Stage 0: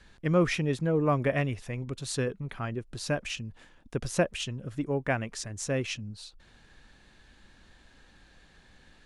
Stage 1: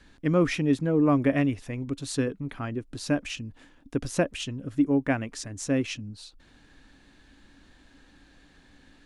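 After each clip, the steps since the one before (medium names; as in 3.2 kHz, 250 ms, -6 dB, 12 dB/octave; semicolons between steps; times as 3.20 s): peaking EQ 280 Hz +12.5 dB 0.31 oct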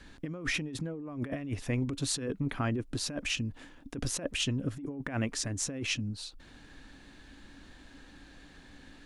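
compressor with a negative ratio -32 dBFS, ratio -1; trim -2 dB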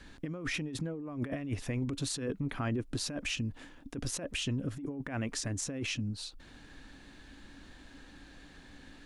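peak limiter -25.5 dBFS, peak gain reduction 7.5 dB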